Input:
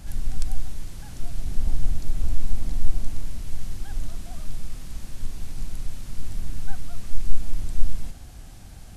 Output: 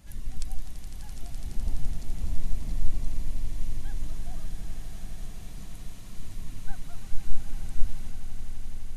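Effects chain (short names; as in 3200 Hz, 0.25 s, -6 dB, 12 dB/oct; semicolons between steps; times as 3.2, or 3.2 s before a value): per-bin expansion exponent 1.5; swelling echo 84 ms, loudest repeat 8, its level -12 dB; gain -2.5 dB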